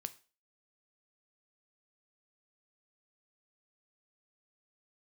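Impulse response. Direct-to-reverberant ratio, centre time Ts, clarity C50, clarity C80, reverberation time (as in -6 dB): 11.5 dB, 4 ms, 18.0 dB, 23.0 dB, 0.35 s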